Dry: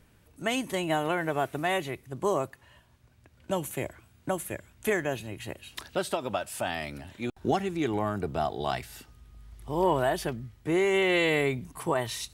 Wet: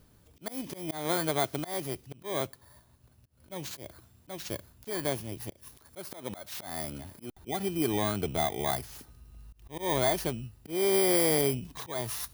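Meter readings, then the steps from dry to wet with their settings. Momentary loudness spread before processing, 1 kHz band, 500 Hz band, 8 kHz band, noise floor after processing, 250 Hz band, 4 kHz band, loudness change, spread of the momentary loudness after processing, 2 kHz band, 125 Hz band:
14 LU, −4.5 dB, −3.0 dB, +4.5 dB, −62 dBFS, −3.0 dB, −1.0 dB, −1.0 dB, 18 LU, −7.5 dB, −2.0 dB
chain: samples in bit-reversed order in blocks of 16 samples
volume swells 205 ms

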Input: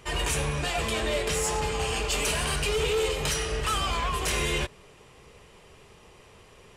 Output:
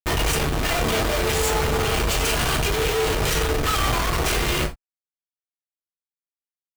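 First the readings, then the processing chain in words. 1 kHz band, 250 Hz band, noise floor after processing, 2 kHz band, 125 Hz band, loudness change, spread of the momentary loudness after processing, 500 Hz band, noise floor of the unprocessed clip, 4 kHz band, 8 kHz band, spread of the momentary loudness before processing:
+6.0 dB, +8.0 dB, below −85 dBFS, +5.5 dB, +7.0 dB, +5.5 dB, 1 LU, +5.0 dB, −54 dBFS, +4.5 dB, +3.5 dB, 2 LU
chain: sub-octave generator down 2 octaves, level 0 dB
comparator with hysteresis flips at −32.5 dBFS
reverb whose tail is shaped and stops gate 100 ms falling, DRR 3.5 dB
level +5 dB

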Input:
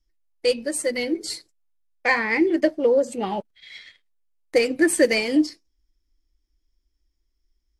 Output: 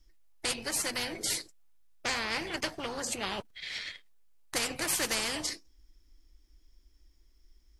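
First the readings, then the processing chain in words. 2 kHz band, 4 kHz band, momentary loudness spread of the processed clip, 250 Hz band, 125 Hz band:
−9.5 dB, −1.0 dB, 9 LU, −18.5 dB, can't be measured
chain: every bin compressed towards the loudest bin 4 to 1
level −8.5 dB

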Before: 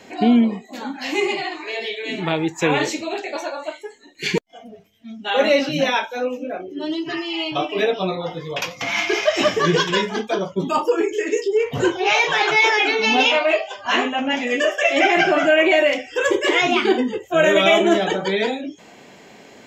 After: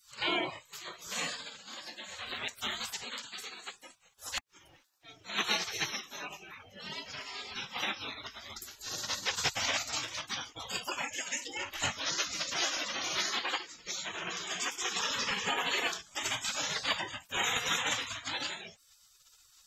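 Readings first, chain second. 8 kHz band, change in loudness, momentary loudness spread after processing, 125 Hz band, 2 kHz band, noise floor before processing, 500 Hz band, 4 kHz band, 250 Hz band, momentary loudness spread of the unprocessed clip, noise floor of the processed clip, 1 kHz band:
−1.0 dB, −15.0 dB, 13 LU, −19.0 dB, −15.0 dB, −46 dBFS, −26.0 dB, −9.0 dB, −26.0 dB, 13 LU, −64 dBFS, −16.5 dB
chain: gate on every frequency bin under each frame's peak −25 dB weak
level +1.5 dB

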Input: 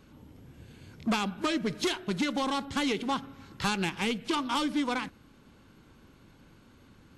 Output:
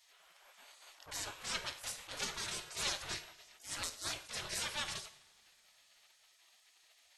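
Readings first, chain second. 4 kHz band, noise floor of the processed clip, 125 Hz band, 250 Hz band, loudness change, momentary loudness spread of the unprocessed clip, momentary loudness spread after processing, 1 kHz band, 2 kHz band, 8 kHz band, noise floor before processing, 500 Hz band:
−5.5 dB, −69 dBFS, −15.0 dB, −27.5 dB, −9.0 dB, 5 LU, 18 LU, −15.0 dB, −8.5 dB, +2.0 dB, −58 dBFS, −16.5 dB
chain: gate on every frequency bin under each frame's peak −25 dB weak
coupled-rooms reverb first 0.62 s, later 3.5 s, from −22 dB, DRR 10 dB
level that may rise only so fast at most 170 dB per second
level +5 dB

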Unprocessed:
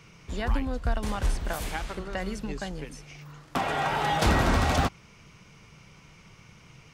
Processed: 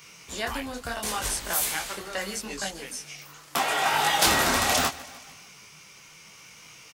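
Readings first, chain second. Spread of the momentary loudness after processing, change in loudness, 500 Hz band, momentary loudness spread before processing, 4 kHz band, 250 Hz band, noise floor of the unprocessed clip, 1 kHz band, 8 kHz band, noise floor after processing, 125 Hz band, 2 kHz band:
20 LU, +3.0 dB, −0.5 dB, 16 LU, +8.5 dB, −4.5 dB, −54 dBFS, +2.0 dB, +13.5 dB, −51 dBFS, −11.0 dB, +4.5 dB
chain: RIAA equalisation recording
on a send: repeating echo 150 ms, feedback 56%, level −20 dB
on the sum: micro pitch shift up and down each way 26 cents
level +6 dB

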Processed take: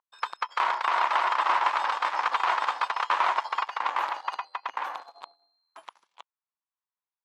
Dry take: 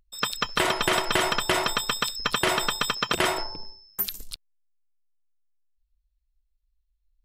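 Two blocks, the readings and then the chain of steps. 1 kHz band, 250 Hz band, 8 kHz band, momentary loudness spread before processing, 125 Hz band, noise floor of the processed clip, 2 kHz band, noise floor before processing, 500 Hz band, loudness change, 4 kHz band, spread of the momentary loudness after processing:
+5.5 dB, below −20 dB, below −15 dB, 14 LU, below −30 dB, below −85 dBFS, −2.0 dB, −74 dBFS, −9.0 dB, −2.0 dB, −10.5 dB, 11 LU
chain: in parallel at −0.5 dB: downward compressor, threshold −34 dBFS, peak gain reduction 14.5 dB
on the sum: delay with pitch and tempo change per echo 368 ms, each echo −2 semitones, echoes 2
harmonic generator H 6 −8 dB, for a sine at −5 dBFS
four-pole ladder band-pass 1,100 Hz, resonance 60%
level +4 dB

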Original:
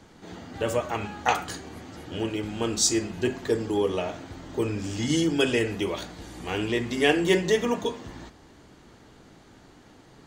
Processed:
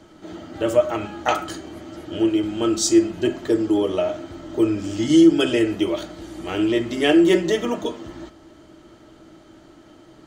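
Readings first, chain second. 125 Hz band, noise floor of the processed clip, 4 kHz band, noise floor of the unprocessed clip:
+0.5 dB, −49 dBFS, +2.0 dB, −53 dBFS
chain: hollow resonant body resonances 330/610/1,300/3,100 Hz, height 14 dB, ringing for 85 ms

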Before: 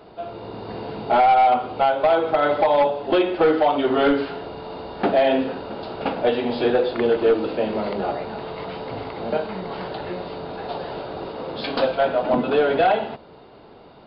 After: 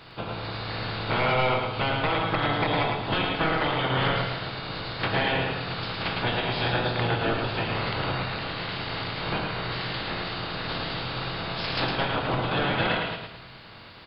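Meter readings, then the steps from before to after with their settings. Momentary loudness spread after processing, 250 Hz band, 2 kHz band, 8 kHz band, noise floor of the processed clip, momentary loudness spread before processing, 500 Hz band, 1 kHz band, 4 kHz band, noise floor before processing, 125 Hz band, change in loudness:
8 LU, −6.5 dB, +3.0 dB, can't be measured, −45 dBFS, 15 LU, −10.5 dB, −7.0 dB, +5.0 dB, −46 dBFS, +8.5 dB, −6.0 dB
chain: ceiling on every frequency bin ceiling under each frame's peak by 24 dB
parametric band 110 Hz +10.5 dB 0.77 octaves
downward compressor 2 to 1, threshold −27 dBFS, peak gain reduction 9 dB
on a send: repeating echo 109 ms, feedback 36%, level −4 dB
on the sum: rectangular room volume 390 cubic metres, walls furnished, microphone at 0.65 metres
level −2.5 dB

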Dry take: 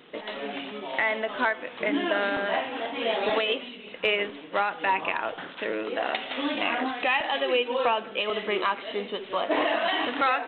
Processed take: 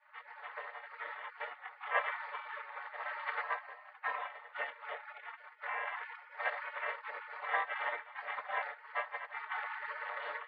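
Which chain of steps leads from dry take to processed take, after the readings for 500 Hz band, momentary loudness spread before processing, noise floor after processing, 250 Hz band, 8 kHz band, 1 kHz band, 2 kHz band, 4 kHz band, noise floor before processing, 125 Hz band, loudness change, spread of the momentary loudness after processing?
−20.0 dB, 8 LU, −58 dBFS, below −40 dB, can't be measured, −11.5 dB, −9.5 dB, −23.0 dB, −43 dBFS, below −40 dB, −12.5 dB, 10 LU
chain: channel vocoder with a chord as carrier major triad, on C4
gate on every frequency bin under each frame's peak −30 dB weak
Chebyshev band-pass filter 510–2,000 Hz, order 3
level +18 dB

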